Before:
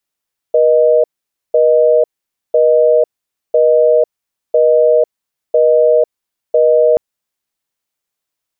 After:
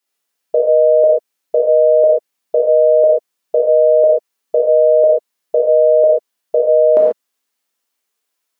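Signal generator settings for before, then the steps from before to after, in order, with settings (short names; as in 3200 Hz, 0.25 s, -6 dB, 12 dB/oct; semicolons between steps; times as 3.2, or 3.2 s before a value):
call progress tone busy tone, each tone -9.5 dBFS 6.43 s
brick-wall FIR high-pass 180 Hz; non-linear reverb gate 0.16 s flat, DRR -3.5 dB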